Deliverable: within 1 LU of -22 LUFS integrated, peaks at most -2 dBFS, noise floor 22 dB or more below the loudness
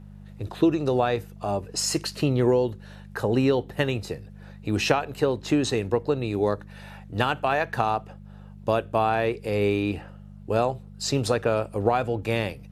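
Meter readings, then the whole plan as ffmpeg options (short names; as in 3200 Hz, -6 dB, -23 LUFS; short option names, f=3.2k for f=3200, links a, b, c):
hum 50 Hz; harmonics up to 200 Hz; hum level -42 dBFS; loudness -25.5 LUFS; peak -3.5 dBFS; loudness target -22.0 LUFS
-> -af "bandreject=f=50:t=h:w=4,bandreject=f=100:t=h:w=4,bandreject=f=150:t=h:w=4,bandreject=f=200:t=h:w=4"
-af "volume=3.5dB,alimiter=limit=-2dB:level=0:latency=1"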